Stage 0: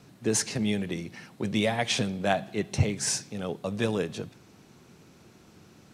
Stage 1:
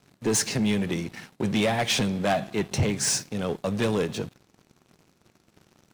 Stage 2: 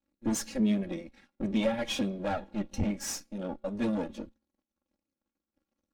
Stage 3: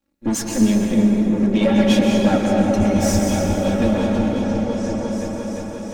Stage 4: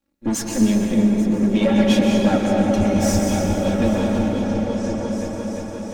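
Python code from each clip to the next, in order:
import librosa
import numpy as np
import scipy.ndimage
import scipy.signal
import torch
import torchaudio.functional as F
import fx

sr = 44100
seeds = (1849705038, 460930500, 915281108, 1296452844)

y1 = fx.leveller(x, sr, passes=3)
y1 = y1 * librosa.db_to_amplitude(-6.0)
y2 = fx.lower_of_two(y1, sr, delay_ms=3.6)
y2 = fx.comb_fb(y2, sr, f0_hz=74.0, decay_s=0.81, harmonics='odd', damping=0.0, mix_pct=30)
y2 = fx.spectral_expand(y2, sr, expansion=1.5)
y3 = fx.echo_opening(y2, sr, ms=351, hz=400, octaves=1, feedback_pct=70, wet_db=0)
y3 = fx.rev_plate(y3, sr, seeds[0], rt60_s=3.9, hf_ratio=0.5, predelay_ms=110, drr_db=-0.5)
y3 = y3 * librosa.db_to_amplitude(8.5)
y4 = y3 + 10.0 ** (-16.5 / 20.0) * np.pad(y3, (int(836 * sr / 1000.0), 0))[:len(y3)]
y4 = y4 * librosa.db_to_amplitude(-1.0)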